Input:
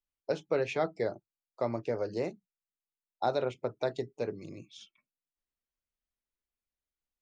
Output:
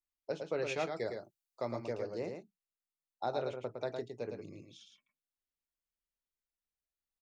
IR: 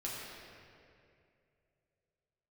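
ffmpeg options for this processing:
-filter_complex "[0:a]asettb=1/sr,asplit=3[s0][s1][s2];[s0]atrim=end=0.594[s3];[s1]atrim=start=0.59:end=1.93,asetpts=PTS-STARTPTS,afade=t=in:d=0.004:c=qsin,afade=t=out:st=1.336:d=0.004:c=qsin,highshelf=f=2900:g=10[s4];[s2]atrim=start=1.926[s5];[s3][s4]acrossfade=d=0.004:c1=hsin:c2=qsin[s6];[s6][s5]acrossfade=d=0.004:c1=qsin:c2=hsin,aecho=1:1:110:0.531,volume=0.473"

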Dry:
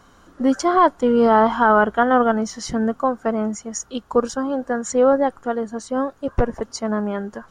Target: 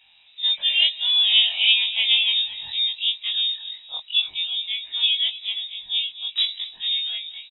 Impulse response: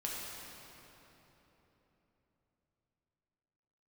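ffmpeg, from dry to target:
-filter_complex "[0:a]afftfilt=real='re':imag='-im':win_size=2048:overlap=0.75,asplit=5[s0][s1][s2][s3][s4];[s1]adelay=232,afreqshift=-48,volume=0.178[s5];[s2]adelay=464,afreqshift=-96,volume=0.0733[s6];[s3]adelay=696,afreqshift=-144,volume=0.0299[s7];[s4]adelay=928,afreqshift=-192,volume=0.0123[s8];[s0][s5][s6][s7][s8]amix=inputs=5:normalize=0,lowpass=f=3300:t=q:w=0.5098,lowpass=f=3300:t=q:w=0.6013,lowpass=f=3300:t=q:w=0.9,lowpass=f=3300:t=q:w=2.563,afreqshift=-3900,acrossover=split=130|1100[s9][s10][s11];[s9]acontrast=35[s12];[s12][s10][s11]amix=inputs=3:normalize=0"

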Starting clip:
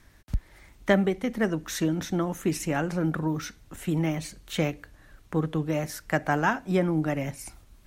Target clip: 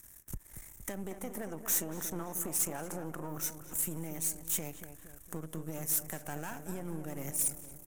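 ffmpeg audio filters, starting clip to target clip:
-filter_complex "[0:a]aeval=exprs='if(lt(val(0),0),0.251*val(0),val(0))':c=same,asettb=1/sr,asplit=3[s0][s1][s2];[s0]atrim=end=1.114[s3];[s1]atrim=start=1.11:end=3.38,asetpts=PTS-STARTPTS,afade=t=in:d=0.004:c=qsin,afade=t=out:st=2.266:d=0.004:c=qsin,equalizer=f=890:w=0.67:g=10[s4];[s2]atrim=start=3.376[s5];[s3][s4]acrossfade=d=0.004:c1=hsin:c2=qsin[s6];[s6][s5]acrossfade=d=0.004:c1=qsin:c2=hsin,alimiter=limit=0.075:level=0:latency=1:release=224,acompressor=threshold=0.0282:ratio=6,aexciter=amount=10.3:drive=6.6:freq=6500,asoftclip=type=tanh:threshold=0.106,asplit=2[s7][s8];[s8]adelay=232,lowpass=f=1800:p=1,volume=0.355,asplit=2[s9][s10];[s10]adelay=232,lowpass=f=1800:p=1,volume=0.53,asplit=2[s11][s12];[s12]adelay=232,lowpass=f=1800:p=1,volume=0.53,asplit=2[s13][s14];[s14]adelay=232,lowpass=f=1800:p=1,volume=0.53,asplit=2[s15][s16];[s16]adelay=232,lowpass=f=1800:p=1,volume=0.53,asplit=2[s17][s18];[s18]adelay=232,lowpass=f=1800:p=1,volume=0.53[s19];[s7][s9][s11][s13][s15][s17][s19]amix=inputs=7:normalize=0,volume=0.668"

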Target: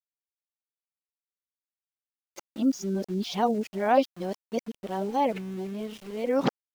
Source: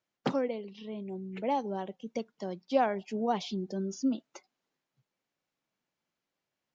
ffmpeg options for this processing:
-af "areverse,aeval=exprs='val(0)*gte(abs(val(0)),0.00398)':c=same,volume=1.78"

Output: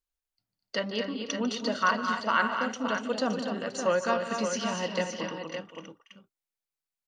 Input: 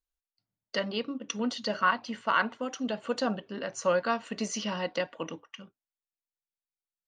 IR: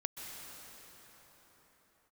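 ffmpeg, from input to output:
-af "aecho=1:1:149|210|242|298|521|567:0.178|0.251|0.447|0.126|0.133|0.422"

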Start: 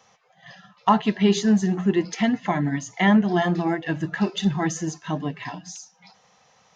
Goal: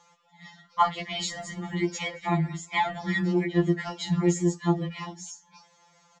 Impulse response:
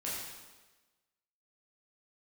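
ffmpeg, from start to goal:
-af "asetrate=48069,aresample=44100,afftfilt=real='re*2.83*eq(mod(b,8),0)':imag='im*2.83*eq(mod(b,8),0)':win_size=2048:overlap=0.75"

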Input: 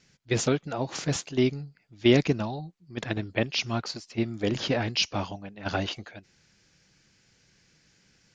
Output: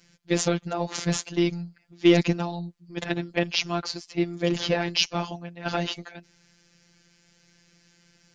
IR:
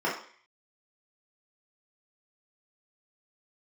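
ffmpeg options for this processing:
-af "acontrast=50,afftfilt=real='hypot(re,im)*cos(PI*b)':imag='0':win_size=1024:overlap=0.75"

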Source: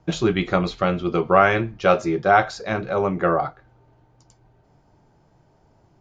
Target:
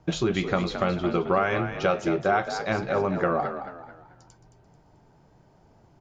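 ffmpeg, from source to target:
-filter_complex "[0:a]acompressor=threshold=0.0794:ratio=3,asplit=2[s0][s1];[s1]asplit=4[s2][s3][s4][s5];[s2]adelay=219,afreqshift=48,volume=0.335[s6];[s3]adelay=438,afreqshift=96,volume=0.124[s7];[s4]adelay=657,afreqshift=144,volume=0.0457[s8];[s5]adelay=876,afreqshift=192,volume=0.017[s9];[s6][s7][s8][s9]amix=inputs=4:normalize=0[s10];[s0][s10]amix=inputs=2:normalize=0"

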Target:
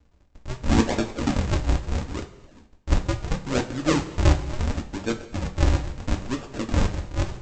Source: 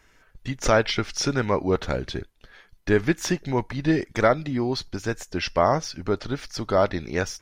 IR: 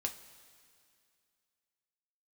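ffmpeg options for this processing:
-filter_complex "[0:a]bandreject=f=50:t=h:w=6,bandreject=f=100:t=h:w=6,bandreject=f=150:t=h:w=6,bandreject=f=200:t=h:w=6,aresample=16000,acrusher=samples=41:mix=1:aa=0.000001:lfo=1:lforange=65.6:lforate=0.74,aresample=44100[s0];[1:a]atrim=start_sample=2205,afade=t=out:st=0.32:d=0.01,atrim=end_sample=14553[s1];[s0][s1]afir=irnorm=-1:irlink=0"

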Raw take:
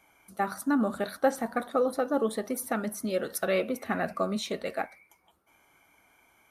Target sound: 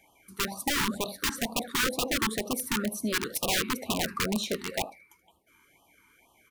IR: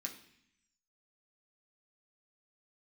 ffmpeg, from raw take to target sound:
-af "aecho=1:1:78:0.15,aeval=exprs='(mod(14.1*val(0)+1,2)-1)/14.1':c=same,afftfilt=real='re*(1-between(b*sr/1024,590*pow(1800/590,0.5+0.5*sin(2*PI*2.1*pts/sr))/1.41,590*pow(1800/590,0.5+0.5*sin(2*PI*2.1*pts/sr))*1.41))':imag='im*(1-between(b*sr/1024,590*pow(1800/590,0.5+0.5*sin(2*PI*2.1*pts/sr))/1.41,590*pow(1800/590,0.5+0.5*sin(2*PI*2.1*pts/sr))*1.41))':win_size=1024:overlap=0.75,volume=1.26"

